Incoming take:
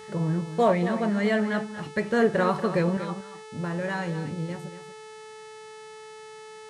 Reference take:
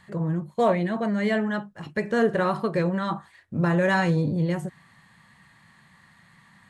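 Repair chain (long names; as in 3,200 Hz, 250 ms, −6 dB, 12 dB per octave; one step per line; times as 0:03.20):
hum removal 434.5 Hz, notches 24
echo removal 235 ms −11.5 dB
level correction +8.5 dB, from 0:02.97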